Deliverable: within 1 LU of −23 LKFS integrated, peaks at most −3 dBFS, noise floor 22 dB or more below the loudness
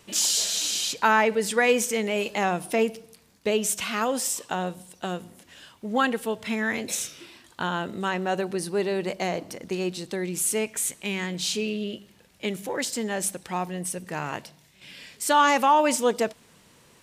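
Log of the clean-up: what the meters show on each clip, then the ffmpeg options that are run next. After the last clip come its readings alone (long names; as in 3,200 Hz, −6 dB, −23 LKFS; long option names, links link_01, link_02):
integrated loudness −26.0 LKFS; sample peak −6.5 dBFS; target loudness −23.0 LKFS
→ -af "volume=3dB"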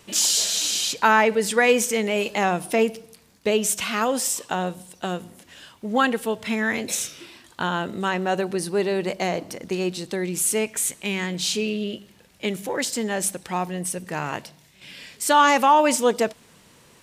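integrated loudness −23.0 LKFS; sample peak −3.5 dBFS; background noise floor −55 dBFS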